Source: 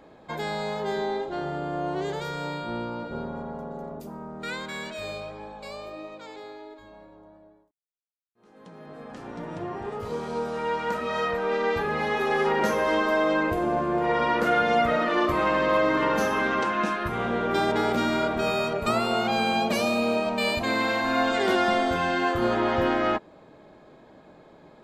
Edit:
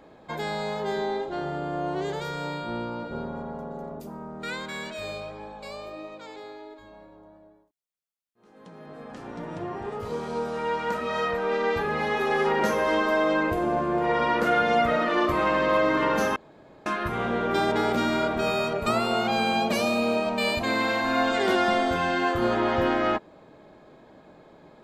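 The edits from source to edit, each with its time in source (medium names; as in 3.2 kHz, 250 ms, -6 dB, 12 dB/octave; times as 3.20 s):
16.36–16.86 s: room tone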